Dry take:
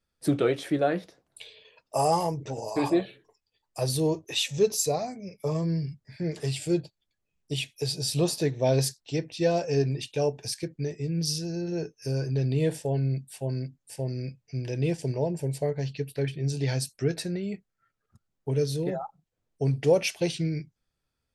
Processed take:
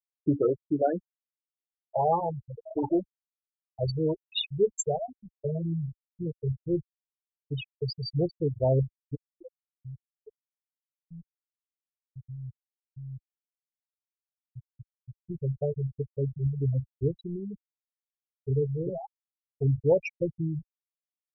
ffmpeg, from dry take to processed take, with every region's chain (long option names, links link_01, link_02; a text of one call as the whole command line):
ffmpeg -i in.wav -filter_complex "[0:a]asettb=1/sr,asplit=3[link_01][link_02][link_03];[link_01]atrim=end=9.154[link_04];[link_02]atrim=start=9.15:end=15.3,asetpts=PTS-STARTPTS,afade=type=in:duration=0.004:curve=qsin,afade=type=out:start_time=6.146:duration=0.004:curve=qsin,acompressor=threshold=-44dB:ratio=2:attack=3.2:release=140:knee=1:detection=peak,asoftclip=type=hard:threshold=-35dB,aecho=1:1:105:0.133,atrim=end_sample=271215[link_05];[link_03]atrim=start=15.296[link_06];[link_04][link_05]acrossfade=duration=0.004:curve1=hsin:curve2=qsin[link_07];[link_07][link_06]acrossfade=duration=0.004:curve1=qsin:curve2=hsin,afftfilt=real='re*gte(hypot(re,im),0.158)':imag='im*gte(hypot(re,im),0.158)':win_size=1024:overlap=0.75,asubboost=boost=7.5:cutoff=69" out.wav